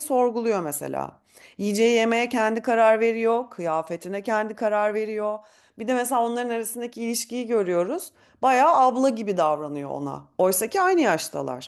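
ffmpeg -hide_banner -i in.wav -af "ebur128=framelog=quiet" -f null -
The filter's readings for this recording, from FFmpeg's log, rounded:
Integrated loudness:
  I:         -23.3 LUFS
  Threshold: -33.6 LUFS
Loudness range:
  LRA:         4.3 LU
  Threshold: -43.5 LUFS
  LRA low:   -26.2 LUFS
  LRA high:  -21.9 LUFS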